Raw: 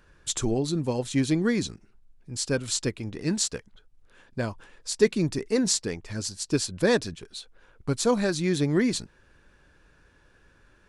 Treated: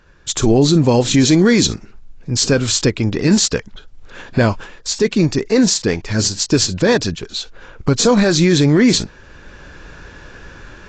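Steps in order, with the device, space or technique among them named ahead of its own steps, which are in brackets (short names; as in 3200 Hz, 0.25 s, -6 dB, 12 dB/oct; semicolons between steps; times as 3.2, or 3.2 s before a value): 1.25–1.67 tone controls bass -2 dB, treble +5 dB; low-bitrate web radio (AGC gain up to 15.5 dB; limiter -10.5 dBFS, peak gain reduction 9.5 dB; gain +6.5 dB; AAC 32 kbps 16000 Hz)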